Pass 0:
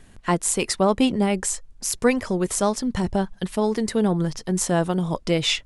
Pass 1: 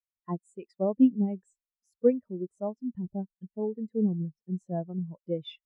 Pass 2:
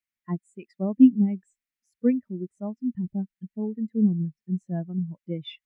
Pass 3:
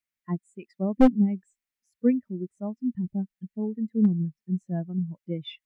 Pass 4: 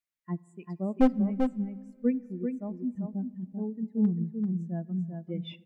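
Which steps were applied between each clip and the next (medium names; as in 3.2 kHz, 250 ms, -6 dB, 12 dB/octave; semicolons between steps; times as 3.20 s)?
high-pass 64 Hz 6 dB/octave; treble shelf 6.1 kHz -6 dB; spectral contrast expander 2.5:1; trim -3.5 dB
graphic EQ 125/250/500/1000/2000 Hz +4/+7/-8/-4/+12 dB
one-sided wavefolder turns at -13.5 dBFS
delay 391 ms -5.5 dB; on a send at -20 dB: reverberation RT60 2.1 s, pre-delay 6 ms; on the sum: trim -4.5 dB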